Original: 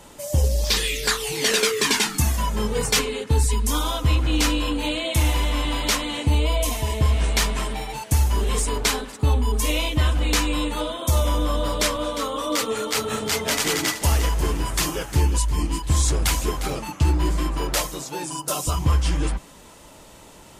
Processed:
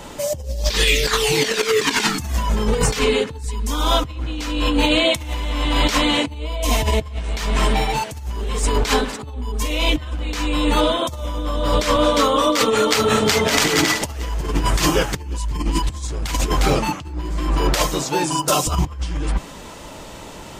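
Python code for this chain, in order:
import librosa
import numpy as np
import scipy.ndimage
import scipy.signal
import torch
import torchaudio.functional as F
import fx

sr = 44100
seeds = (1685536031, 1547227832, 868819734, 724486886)

y = fx.peak_eq(x, sr, hz=11000.0, db=-9.5, octaves=0.83)
y = fx.over_compress(y, sr, threshold_db=-25.0, ratio=-0.5)
y = F.gain(torch.from_numpy(y), 6.5).numpy()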